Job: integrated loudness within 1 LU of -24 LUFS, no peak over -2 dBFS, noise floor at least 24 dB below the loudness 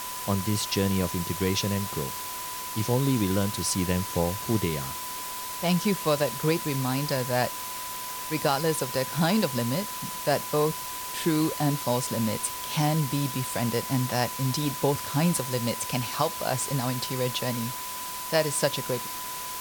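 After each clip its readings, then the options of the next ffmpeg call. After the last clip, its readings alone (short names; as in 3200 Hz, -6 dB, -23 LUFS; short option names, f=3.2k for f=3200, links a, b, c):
steady tone 1000 Hz; tone level -37 dBFS; noise floor -35 dBFS; noise floor target -52 dBFS; loudness -27.5 LUFS; peak -10.0 dBFS; loudness target -24.0 LUFS
-> -af "bandreject=f=1k:w=30"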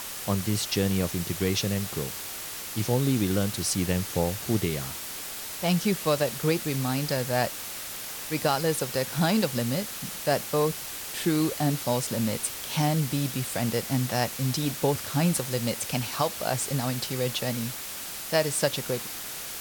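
steady tone none; noise floor -37 dBFS; noise floor target -52 dBFS
-> -af "afftdn=nr=15:nf=-37"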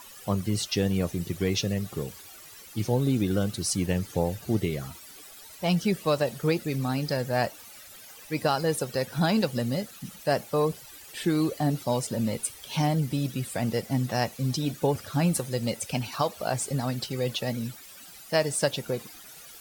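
noise floor -48 dBFS; noise floor target -52 dBFS
-> -af "afftdn=nr=6:nf=-48"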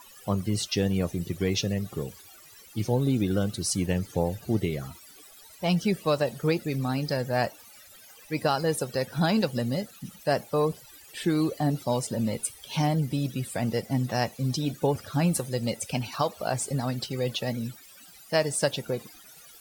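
noise floor -51 dBFS; noise floor target -52 dBFS
-> -af "afftdn=nr=6:nf=-51"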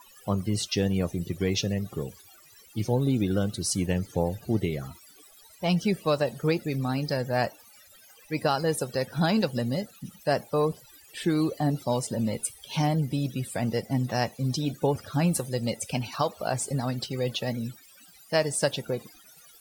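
noise floor -54 dBFS; loudness -28.0 LUFS; peak -11.5 dBFS; loudness target -24.0 LUFS
-> -af "volume=4dB"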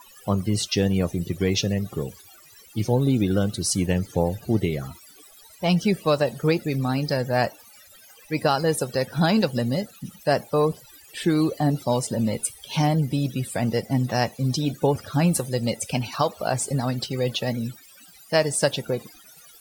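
loudness -24.0 LUFS; peak -7.5 dBFS; noise floor -50 dBFS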